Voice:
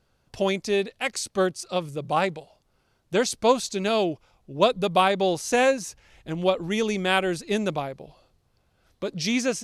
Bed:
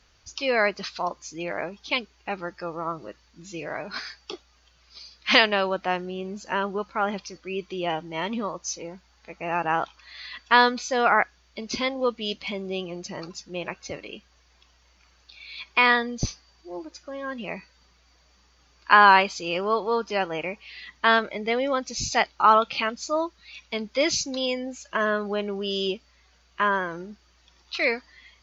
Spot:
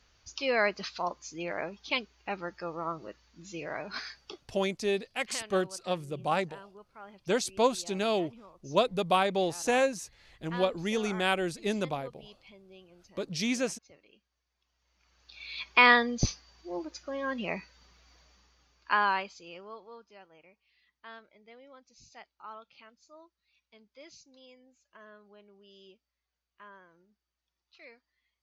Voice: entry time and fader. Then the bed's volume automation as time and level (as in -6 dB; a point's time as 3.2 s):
4.15 s, -5.5 dB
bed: 4.13 s -4.5 dB
4.98 s -23 dB
14.55 s -23 dB
15.43 s -0.5 dB
18.19 s -0.5 dB
20.22 s -28.5 dB